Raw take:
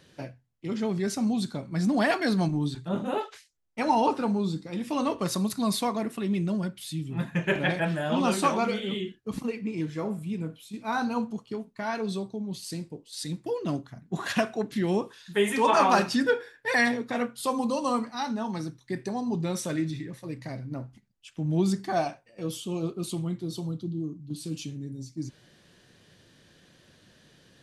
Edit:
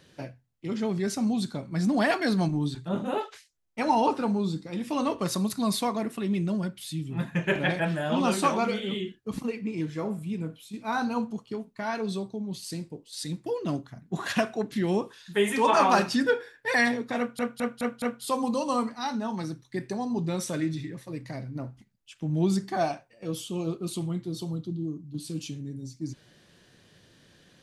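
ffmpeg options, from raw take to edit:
-filter_complex "[0:a]asplit=5[a][b][c][d][e];[a]atrim=end=17.392[f];[b]atrim=start=17.178:end=17.392[g];[c]atrim=start=17.178:end=17.392[h];[d]atrim=start=17.178:end=17.392[i];[e]atrim=start=17.178[j];[f][g]acrossfade=d=0.004:c1=hsin:c2=hsin[k];[k][h]acrossfade=d=0.004:c1=hsin:c2=hsin[l];[l][i]acrossfade=d=0.004:c1=hsin:c2=hsin[m];[m][j]acrossfade=d=0.004:c1=hsin:c2=hsin"

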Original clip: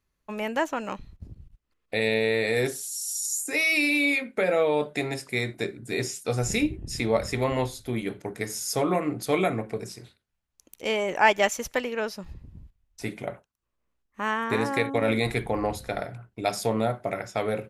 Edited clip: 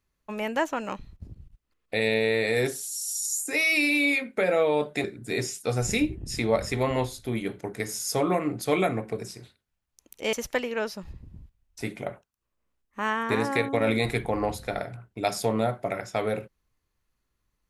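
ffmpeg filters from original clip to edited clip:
-filter_complex "[0:a]asplit=3[a][b][c];[a]atrim=end=5.042[d];[b]atrim=start=5.648:end=10.942[e];[c]atrim=start=11.538[f];[d][e]acrossfade=d=0.004:c1=hsin:c2=hsin[g];[g][f]acrossfade=d=0.004:c1=hsin:c2=hsin"

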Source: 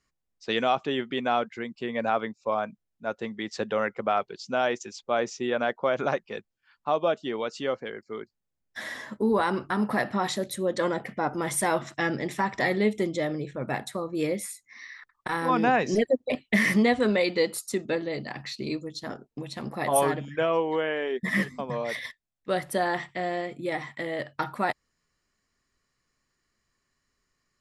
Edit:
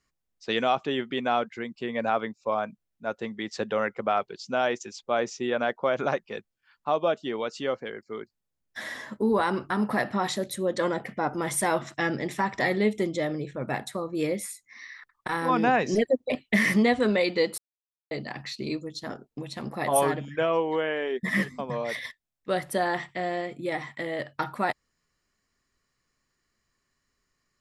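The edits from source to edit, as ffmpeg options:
-filter_complex "[0:a]asplit=3[a][b][c];[a]atrim=end=17.58,asetpts=PTS-STARTPTS,afade=t=out:st=17.576:d=0.004:c=hsin[d];[b]atrim=start=17.58:end=18.11,asetpts=PTS-STARTPTS,volume=0[e];[c]atrim=start=18.11,asetpts=PTS-STARTPTS,afade=t=in:d=0.004:c=hsin[f];[d][e][f]concat=n=3:v=0:a=1"

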